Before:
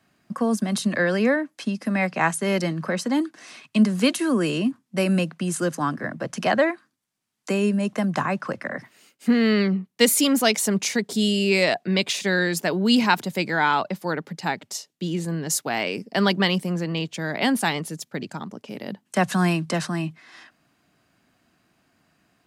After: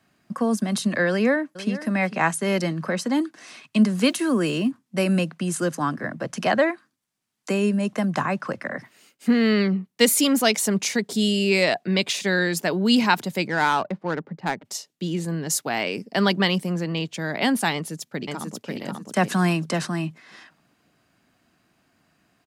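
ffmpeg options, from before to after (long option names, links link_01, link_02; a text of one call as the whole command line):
ffmpeg -i in.wav -filter_complex "[0:a]asplit=2[link_01][link_02];[link_02]afade=type=in:start_time=1.1:duration=0.01,afade=type=out:start_time=1.82:duration=0.01,aecho=0:1:450|900:0.188365|0.0282547[link_03];[link_01][link_03]amix=inputs=2:normalize=0,asettb=1/sr,asplit=3[link_04][link_05][link_06];[link_04]atrim=end=4.074[link_07];[link_05]atrim=start=4.07:end=4.68,asetpts=PTS-STARTPTS,afade=type=in:duration=0.004:curve=qsin,afade=type=out:start_time=0.606:duration=0.004:curve=qsin,acrusher=bits=8:mix=0:aa=0.5[link_08];[link_06]atrim=start=4.676[link_09];[link_07][link_08]acrossfade=duration=0.004:curve1=hsin:curve2=qsin[link_10];[link_10][link_09]acrossfade=duration=0.004:curve1=qsin:curve2=hsin,asplit=3[link_11][link_12][link_13];[link_11]afade=type=out:start_time=13.46:duration=0.02[link_14];[link_12]adynamicsmooth=sensitivity=1.5:basefreq=1200,afade=type=in:start_time=13.46:duration=0.02,afade=type=out:start_time=14.64:duration=0.02[link_15];[link_13]afade=type=in:start_time=14.64:duration=0.02[link_16];[link_14][link_15][link_16]amix=inputs=3:normalize=0,asplit=2[link_17][link_18];[link_18]afade=type=in:start_time=17.73:duration=0.01,afade=type=out:start_time=18.74:duration=0.01,aecho=0:1:540|1080|1620|2160:0.707946|0.212384|0.0637151|0.0191145[link_19];[link_17][link_19]amix=inputs=2:normalize=0" out.wav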